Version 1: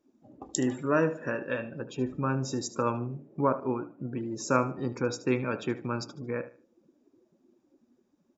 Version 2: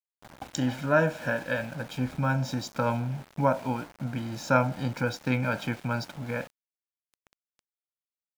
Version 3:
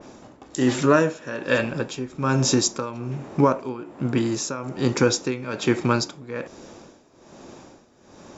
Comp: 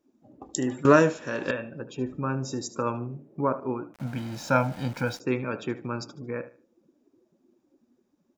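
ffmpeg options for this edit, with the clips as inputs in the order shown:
-filter_complex "[0:a]asplit=3[s0][s1][s2];[s0]atrim=end=0.852[s3];[2:a]atrim=start=0.848:end=1.512[s4];[s1]atrim=start=1.508:end=3.942[s5];[1:a]atrim=start=3.938:end=5.202[s6];[s2]atrim=start=5.198[s7];[s3][s4]acrossfade=d=0.004:c1=hsin:c2=hsin[s8];[s8][s5]acrossfade=d=0.004:c1=hsin:c2=hsin[s9];[s9][s6]acrossfade=d=0.004:c1=hsin:c2=hsin[s10];[s10][s7]acrossfade=d=0.004:c1=hsin:c2=hsin"

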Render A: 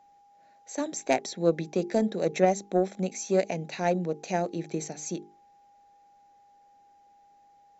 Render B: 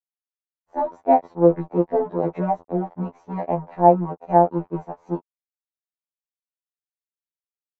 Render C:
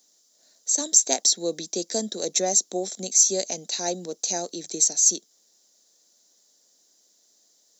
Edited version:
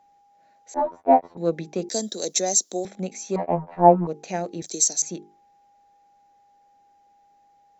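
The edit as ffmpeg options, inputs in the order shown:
-filter_complex "[1:a]asplit=2[s0][s1];[2:a]asplit=2[s2][s3];[0:a]asplit=5[s4][s5][s6][s7][s8];[s4]atrim=end=0.742[s9];[s0]atrim=start=0.738:end=1.372[s10];[s5]atrim=start=1.368:end=1.892[s11];[s2]atrim=start=1.888:end=2.852[s12];[s6]atrim=start=2.848:end=3.362[s13];[s1]atrim=start=3.358:end=4.072[s14];[s7]atrim=start=4.068:end=4.622[s15];[s3]atrim=start=4.618:end=5.022[s16];[s8]atrim=start=5.018[s17];[s9][s10]acrossfade=d=0.004:c1=hsin:c2=hsin[s18];[s18][s11]acrossfade=d=0.004:c1=hsin:c2=hsin[s19];[s19][s12]acrossfade=d=0.004:c1=hsin:c2=hsin[s20];[s20][s13]acrossfade=d=0.004:c1=hsin:c2=hsin[s21];[s21][s14]acrossfade=d=0.004:c1=hsin:c2=hsin[s22];[s22][s15]acrossfade=d=0.004:c1=hsin:c2=hsin[s23];[s23][s16]acrossfade=d=0.004:c1=hsin:c2=hsin[s24];[s24][s17]acrossfade=d=0.004:c1=hsin:c2=hsin"

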